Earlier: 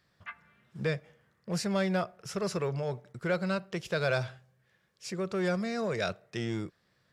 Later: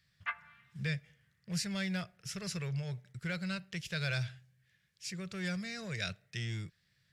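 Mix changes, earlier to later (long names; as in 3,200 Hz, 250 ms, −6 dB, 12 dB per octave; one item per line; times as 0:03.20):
speech: add flat-topped bell 540 Hz −15.5 dB 2.8 octaves
background +6.0 dB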